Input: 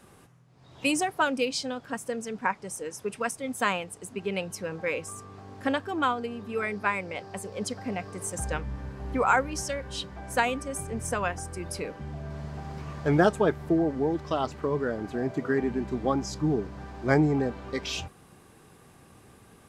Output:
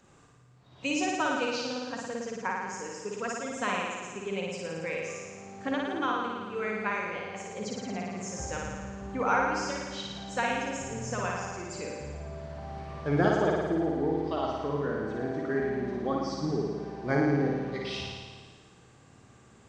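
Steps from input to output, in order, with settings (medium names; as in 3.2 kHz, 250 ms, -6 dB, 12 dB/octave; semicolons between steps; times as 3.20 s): knee-point frequency compression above 4 kHz 1.5:1; flutter echo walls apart 9.6 m, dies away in 1.5 s; trim -6 dB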